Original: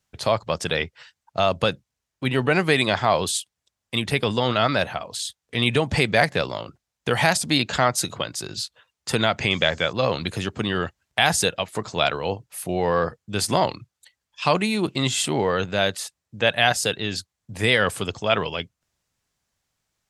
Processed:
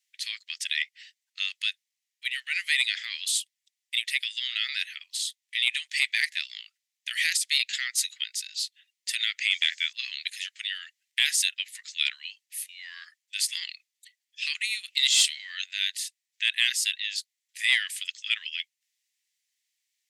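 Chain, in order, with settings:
Chebyshev high-pass filter 1,900 Hz, order 5
0:14.86–0:15.69: dynamic equaliser 4,600 Hz, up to +8 dB, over −39 dBFS, Q 0.86
soft clipping −8 dBFS, distortion −24 dB

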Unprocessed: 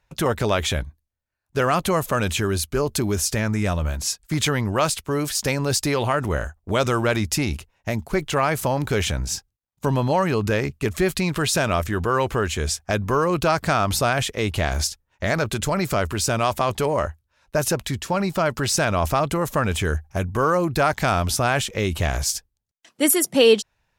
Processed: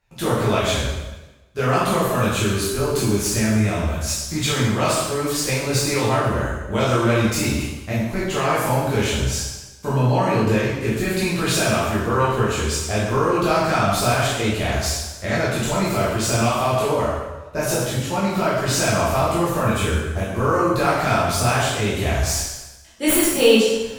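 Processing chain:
stylus tracing distortion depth 0.031 ms
reversed playback
upward compression, threshold −24 dBFS
reversed playback
convolution reverb RT60 1.1 s, pre-delay 5 ms, DRR −9.5 dB
level −8 dB

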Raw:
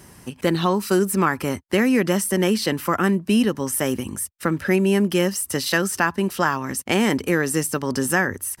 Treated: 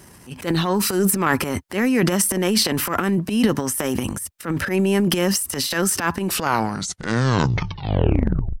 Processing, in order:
turntable brake at the end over 2.39 s
transient designer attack −11 dB, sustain +11 dB

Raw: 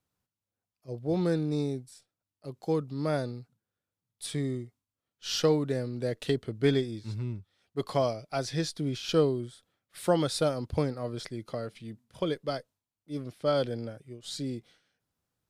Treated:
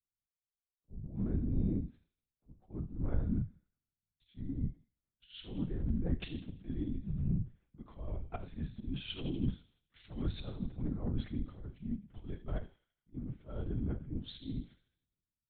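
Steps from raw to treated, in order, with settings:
low shelf with overshoot 310 Hz +12 dB, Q 1.5
volume swells 323 ms
reversed playback
downward compressor 6 to 1, threshold −31 dBFS, peak gain reduction 14 dB
reversed playback
high-frequency loss of the air 260 metres
delay with a high-pass on its return 84 ms, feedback 65%, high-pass 2,900 Hz, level −8 dB
on a send at −9 dB: convolution reverb RT60 0.35 s, pre-delay 23 ms
on the sum: linear-prediction vocoder at 8 kHz whisper
multiband upward and downward expander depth 70%
level −2 dB

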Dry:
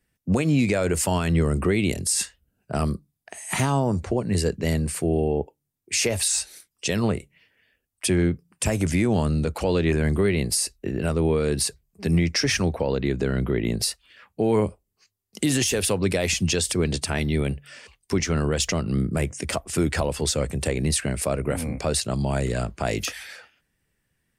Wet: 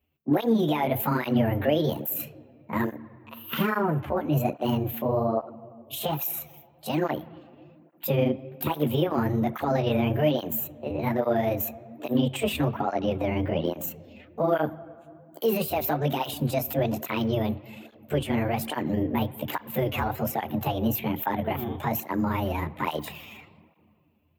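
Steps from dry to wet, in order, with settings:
pitch shift by two crossfaded delay taps +7 semitones
flat-topped bell 6,500 Hz −14.5 dB
on a send at −16.5 dB: convolution reverb RT60 2.3 s, pre-delay 3 ms
on the sum: through-zero flanger with one copy inverted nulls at 1.2 Hz, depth 6.7 ms
level +1.5 dB

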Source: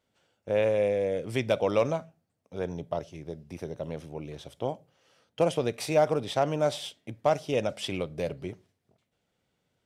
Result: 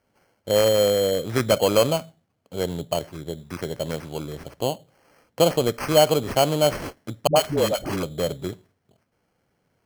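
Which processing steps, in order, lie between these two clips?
0:03.37–0:04.22: parametric band 2,700 Hz +9 dB 1.7 octaves
decimation without filtering 12×
0:07.27–0:08.03: all-pass dispersion highs, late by 88 ms, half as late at 380 Hz
level +6.5 dB

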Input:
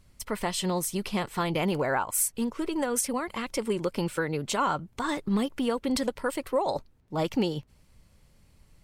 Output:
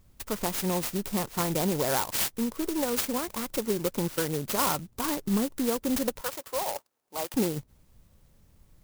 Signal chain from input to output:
0:06.21–0:07.34: high-pass filter 690 Hz 12 dB per octave
converter with an unsteady clock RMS 0.12 ms

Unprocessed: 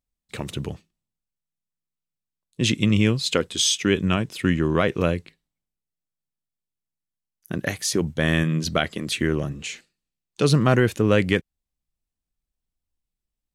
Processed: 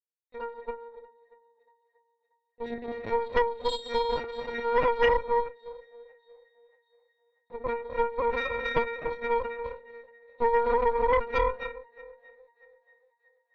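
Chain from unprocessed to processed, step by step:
parametric band 840 Hz +5.5 dB 1.8 octaves
leveller curve on the samples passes 2
high-pass with resonance 540 Hz, resonance Q 5.3
resonances in every octave A#, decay 0.68 s
linear-prediction vocoder at 8 kHz pitch kept
feedback echo with a high-pass in the loop 635 ms, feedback 52%, high-pass 830 Hz, level −13 dB
on a send at −4 dB: convolution reverb RT60 0.40 s, pre-delay 249 ms
on the sum: harmonic generator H 6 −7 dB, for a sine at −15 dBFS

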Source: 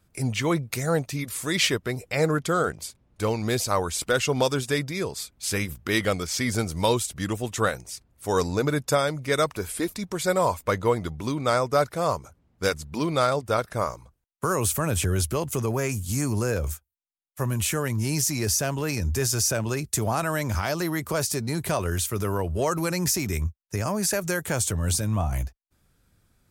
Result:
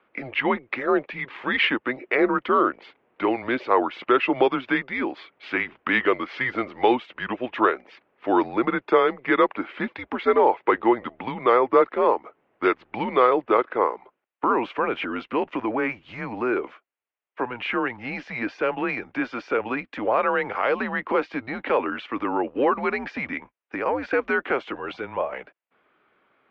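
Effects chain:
in parallel at +2 dB: downward compressor, threshold −33 dBFS, peak gain reduction 15.5 dB
on the sum: single-sideband voice off tune −120 Hz 440–2,900 Hz
level +3.5 dB

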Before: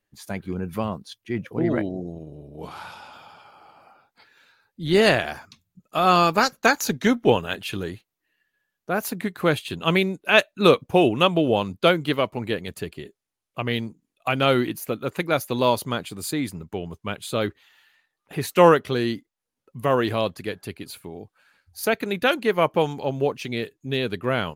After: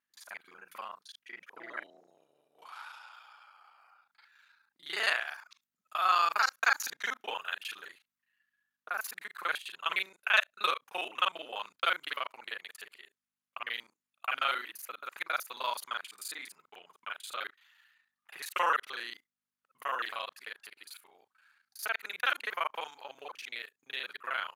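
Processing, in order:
reversed piece by piece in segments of 34 ms
mains hum 50 Hz, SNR 30 dB
high-pass with resonance 1,300 Hz, resonance Q 1.7
level −9 dB

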